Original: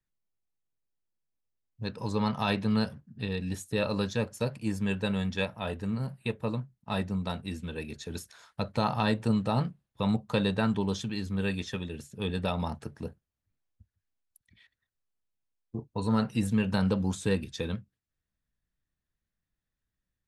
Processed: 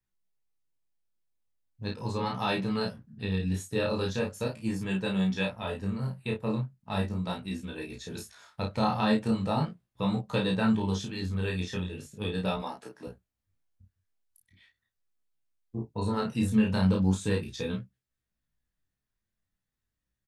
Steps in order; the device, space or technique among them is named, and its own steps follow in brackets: 12.57–13.07 HPF 330 Hz 12 dB/oct; double-tracked vocal (doubler 32 ms -3.5 dB; chorus 0.39 Hz, delay 15.5 ms, depth 7.4 ms); gain +1.5 dB

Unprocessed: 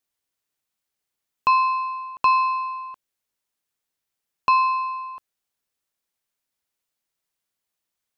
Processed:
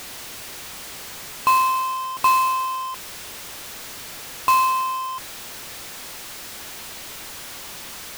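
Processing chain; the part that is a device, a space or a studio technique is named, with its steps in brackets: early CD player with a faulty converter (zero-crossing step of -28 dBFS; clock jitter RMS 0.024 ms)

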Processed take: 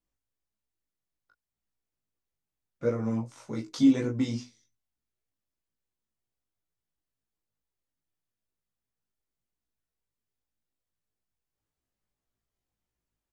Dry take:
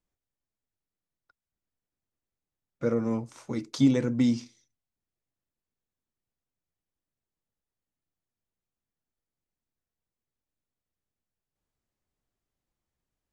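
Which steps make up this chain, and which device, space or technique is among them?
double-tracked vocal (doubler 19 ms -4 dB; chorus 2.7 Hz, delay 16 ms, depth 2.4 ms)

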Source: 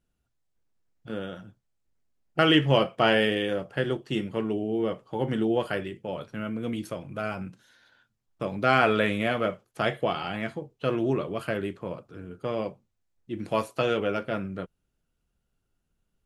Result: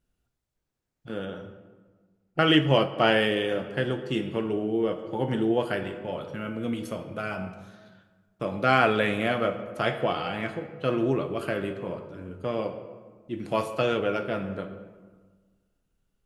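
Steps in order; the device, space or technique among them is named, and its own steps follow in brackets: compressed reverb return (on a send at -6 dB: reverb RT60 1.4 s, pre-delay 9 ms + compressor, threshold -24 dBFS, peak gain reduction 8 dB); 1.25–2.48 on the sum: high shelf 4700 Hz -7 dB

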